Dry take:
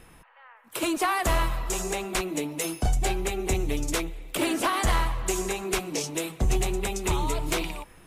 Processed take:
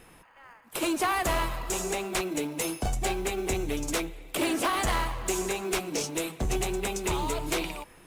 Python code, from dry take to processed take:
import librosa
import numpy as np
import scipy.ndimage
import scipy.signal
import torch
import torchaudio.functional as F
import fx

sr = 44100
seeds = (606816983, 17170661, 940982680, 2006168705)

p1 = fx.low_shelf(x, sr, hz=170.0, db=-8.5)
p2 = fx.sample_hold(p1, sr, seeds[0], rate_hz=1900.0, jitter_pct=0)
p3 = p1 + (p2 * 10.0 ** (-11.0 / 20.0))
y = 10.0 ** (-19.0 / 20.0) * np.tanh(p3 / 10.0 ** (-19.0 / 20.0))